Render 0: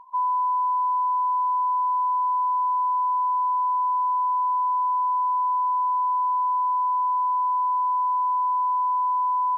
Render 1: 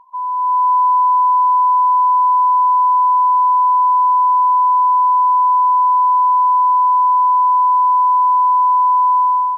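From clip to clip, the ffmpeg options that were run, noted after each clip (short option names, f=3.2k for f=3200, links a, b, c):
-af "dynaudnorm=f=180:g=5:m=10.5dB"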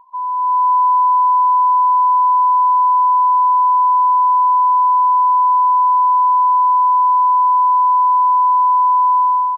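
-af "aresample=11025,aresample=44100"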